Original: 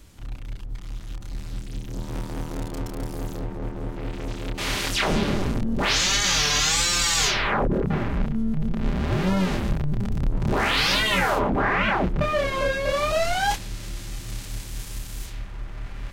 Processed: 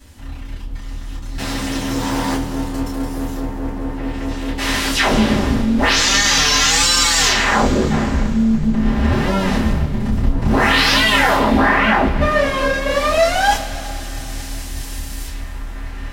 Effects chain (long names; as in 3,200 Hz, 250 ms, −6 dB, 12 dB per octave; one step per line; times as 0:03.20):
0:01.38–0:02.36: mid-hump overdrive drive 30 dB, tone 5,100 Hz, clips at −20.5 dBFS
coupled-rooms reverb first 0.2 s, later 3.2 s, from −22 dB, DRR −9.5 dB
level −2 dB